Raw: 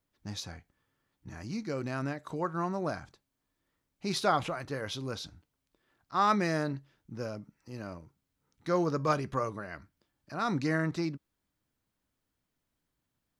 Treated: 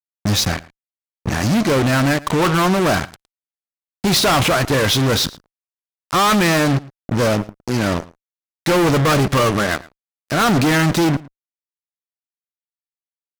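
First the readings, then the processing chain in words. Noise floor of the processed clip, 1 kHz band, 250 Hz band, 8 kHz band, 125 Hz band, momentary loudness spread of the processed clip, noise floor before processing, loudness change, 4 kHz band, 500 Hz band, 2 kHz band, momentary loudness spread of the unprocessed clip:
below −85 dBFS, +13.0 dB, +16.5 dB, +23.0 dB, +18.0 dB, 9 LU, −83 dBFS, +16.0 dB, +21.5 dB, +15.0 dB, +18.5 dB, 17 LU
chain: fuzz pedal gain 46 dB, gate −46 dBFS
slap from a distant wall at 19 metres, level −21 dB

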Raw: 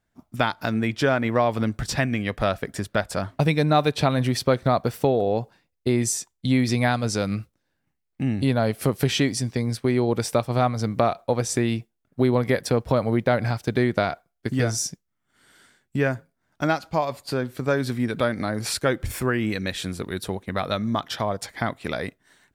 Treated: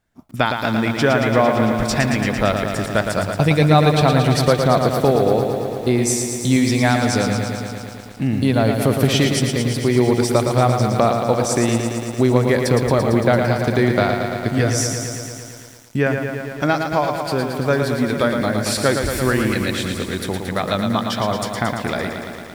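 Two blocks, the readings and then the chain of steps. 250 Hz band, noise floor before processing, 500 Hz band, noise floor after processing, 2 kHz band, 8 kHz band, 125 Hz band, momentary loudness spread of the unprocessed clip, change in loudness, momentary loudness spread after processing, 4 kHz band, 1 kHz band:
+6.0 dB, −77 dBFS, +6.0 dB, −35 dBFS, +6.0 dB, +6.0 dB, +6.0 dB, 8 LU, +6.0 dB, 8 LU, +6.0 dB, +6.0 dB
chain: feedback echo at a low word length 113 ms, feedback 80%, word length 8 bits, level −6 dB
level +4 dB

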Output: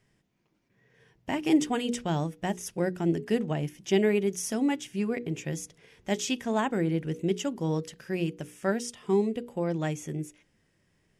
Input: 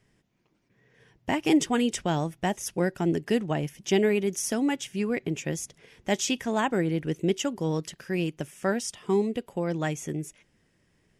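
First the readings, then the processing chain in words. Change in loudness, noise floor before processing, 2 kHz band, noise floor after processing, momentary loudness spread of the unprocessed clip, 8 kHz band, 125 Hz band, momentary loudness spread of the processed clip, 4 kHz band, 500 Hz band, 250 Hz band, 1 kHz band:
−1.5 dB, −69 dBFS, −3.5 dB, −71 dBFS, 9 LU, −4.0 dB, −0.5 dB, 9 LU, −3.5 dB, −1.5 dB, −1.0 dB, −3.0 dB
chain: mains-hum notches 60/120/180/240/300/360/420/480 Hz
harmonic and percussive parts rebalanced percussive −5 dB

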